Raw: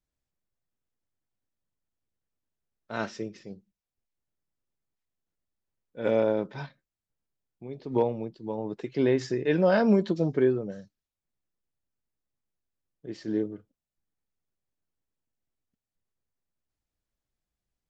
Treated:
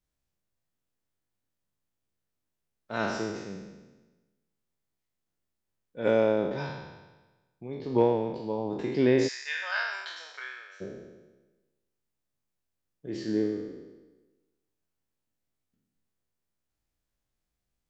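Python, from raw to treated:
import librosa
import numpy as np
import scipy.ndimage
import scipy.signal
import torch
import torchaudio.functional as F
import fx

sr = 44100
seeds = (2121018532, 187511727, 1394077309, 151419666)

y = fx.spec_trails(x, sr, decay_s=1.2)
y = fx.highpass(y, sr, hz=1200.0, slope=24, at=(9.27, 10.8), fade=0.02)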